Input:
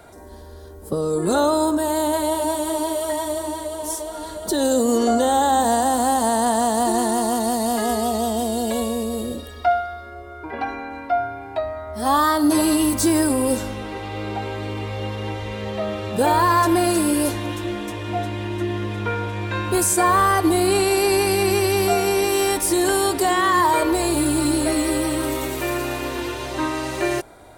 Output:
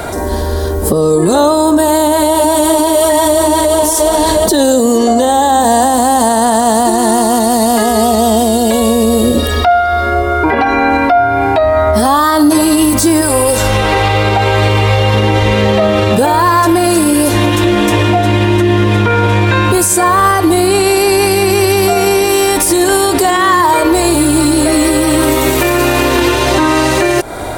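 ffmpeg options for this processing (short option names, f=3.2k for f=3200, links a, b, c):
-filter_complex "[0:a]asettb=1/sr,asplit=3[a][b][c];[a]atrim=end=0.884[d];[b]atrim=start=0.88:end=6.3,asetpts=PTS-STARTPTS,afade=t=in:d=0.004:c=qsin,afade=t=out:st=5.416:d=0.004:c=qsin,bandreject=f=1.4k:w=12[e];[c]atrim=start=6.296[f];[d][e]acrossfade=d=0.004:c1=hsin:c2=qsin[g];[g][f]acrossfade=d=0.004:c1=qsin:c2=hsin,asettb=1/sr,asplit=3[h][i][j];[h]atrim=end=13.214[k];[i]atrim=start=13.21:end=15.14,asetpts=PTS-STARTPTS,afade=t=in:d=0.004:c=qsin,afade=t=out:st=1.926:d=0.004:c=qsin,equalizer=f=260:t=o:w=0.77:g=-13[l];[j]atrim=start=15.136[m];[k][l]acrossfade=d=0.004:c1=hsin:c2=qsin[n];[n][m]acrossfade=d=0.004:c1=qsin:c2=hsin,acompressor=threshold=-30dB:ratio=6,alimiter=level_in=26dB:limit=-1dB:release=50:level=0:latency=1,volume=-1dB"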